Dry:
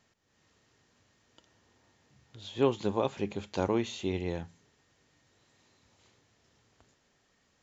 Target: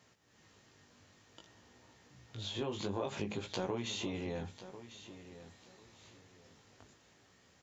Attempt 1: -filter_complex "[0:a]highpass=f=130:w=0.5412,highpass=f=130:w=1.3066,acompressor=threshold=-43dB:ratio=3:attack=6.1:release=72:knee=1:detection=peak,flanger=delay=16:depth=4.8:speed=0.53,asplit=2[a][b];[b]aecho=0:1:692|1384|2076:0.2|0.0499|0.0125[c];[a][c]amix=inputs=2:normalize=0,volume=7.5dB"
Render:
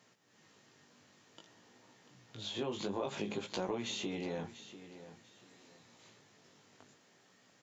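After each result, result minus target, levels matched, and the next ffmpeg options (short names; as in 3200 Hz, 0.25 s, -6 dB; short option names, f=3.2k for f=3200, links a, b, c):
echo 0.354 s early; 125 Hz band -4.5 dB
-filter_complex "[0:a]highpass=f=130:w=0.5412,highpass=f=130:w=1.3066,acompressor=threshold=-43dB:ratio=3:attack=6.1:release=72:knee=1:detection=peak,flanger=delay=16:depth=4.8:speed=0.53,asplit=2[a][b];[b]aecho=0:1:1046|2092|3138:0.2|0.0499|0.0125[c];[a][c]amix=inputs=2:normalize=0,volume=7.5dB"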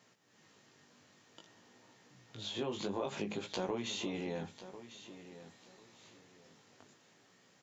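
125 Hz band -4.0 dB
-filter_complex "[0:a]highpass=f=56:w=0.5412,highpass=f=56:w=1.3066,acompressor=threshold=-43dB:ratio=3:attack=6.1:release=72:knee=1:detection=peak,flanger=delay=16:depth=4.8:speed=0.53,asplit=2[a][b];[b]aecho=0:1:1046|2092|3138:0.2|0.0499|0.0125[c];[a][c]amix=inputs=2:normalize=0,volume=7.5dB"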